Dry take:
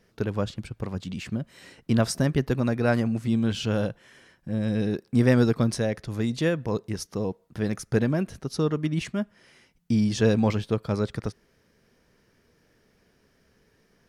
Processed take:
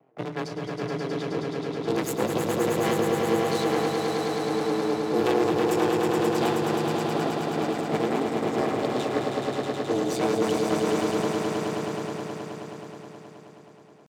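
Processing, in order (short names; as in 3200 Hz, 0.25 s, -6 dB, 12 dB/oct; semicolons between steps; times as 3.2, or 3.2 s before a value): minimum comb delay 4.2 ms; in parallel at 0 dB: compressor 8:1, threshold -35 dBFS, peak gain reduction 19.5 dB; on the sum: ring modulator 47 Hz; low-pass opened by the level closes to 740 Hz, open at -21.5 dBFS; one-sided clip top -30.5 dBFS; frequency shift +69 Hz; pitch shift +5 st; on a send: swelling echo 0.106 s, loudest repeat 5, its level -5.5 dB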